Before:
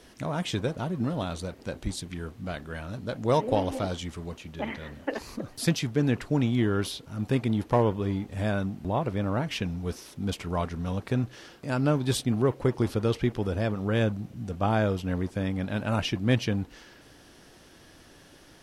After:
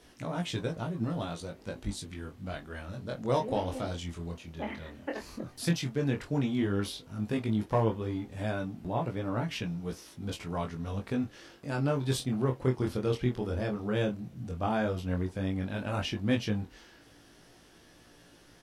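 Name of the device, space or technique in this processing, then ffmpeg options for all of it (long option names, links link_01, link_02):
double-tracked vocal: -filter_complex "[0:a]asplit=2[link_01][link_02];[link_02]adelay=24,volume=-13dB[link_03];[link_01][link_03]amix=inputs=2:normalize=0,flanger=delay=17:depth=6.8:speed=0.11,volume=-1.5dB"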